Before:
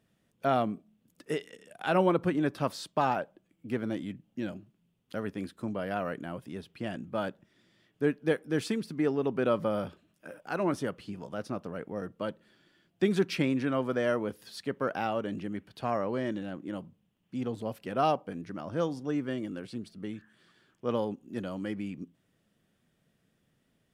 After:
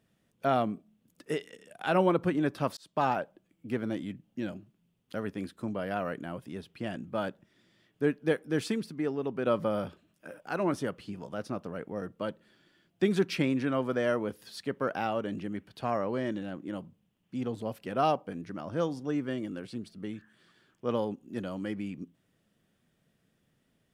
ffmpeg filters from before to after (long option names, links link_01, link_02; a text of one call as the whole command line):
ffmpeg -i in.wav -filter_complex "[0:a]asplit=4[link_01][link_02][link_03][link_04];[link_01]atrim=end=2.77,asetpts=PTS-STARTPTS,afade=type=out:start_time=2.766:duration=0.004:curve=hsin[link_05];[link_02]atrim=start=2.77:end=8.902,asetpts=PTS-STARTPTS,afade=type=in:duration=0.26[link_06];[link_03]atrim=start=8.898:end=9.472,asetpts=PTS-STARTPTS,volume=-3.5dB[link_07];[link_04]atrim=start=9.468[link_08];[link_05][link_06]concat=n=2:v=0:a=1[link_09];[link_09][link_07]acrossfade=duration=0.004:curve1=hsin:curve2=hsin[link_10];[link_10][link_08]acrossfade=duration=0.004:curve1=hsin:curve2=hsin" out.wav